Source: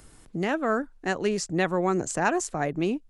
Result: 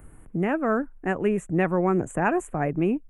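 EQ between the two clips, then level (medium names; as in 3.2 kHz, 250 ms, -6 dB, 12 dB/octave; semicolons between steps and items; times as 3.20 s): Butterworth band-stop 4.8 kHz, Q 0.62; dynamic bell 2.5 kHz, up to +6 dB, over -54 dBFS, Q 4.9; bass shelf 270 Hz +6.5 dB; 0.0 dB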